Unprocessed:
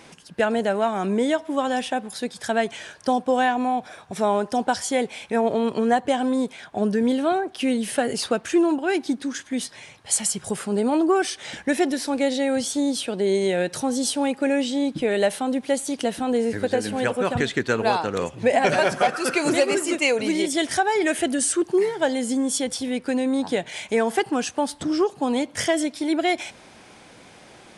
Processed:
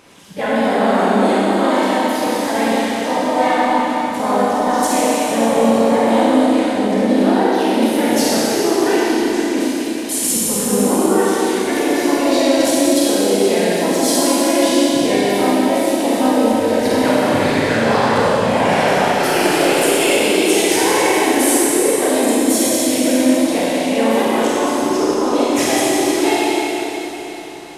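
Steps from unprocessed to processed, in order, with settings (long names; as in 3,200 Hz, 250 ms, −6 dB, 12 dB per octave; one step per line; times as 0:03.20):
output level in coarse steps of 14 dB
pitch-shifted copies added +3 semitones −3 dB, +4 semitones −5 dB
four-comb reverb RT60 3.9 s, combs from 31 ms, DRR −8 dB
level +3.5 dB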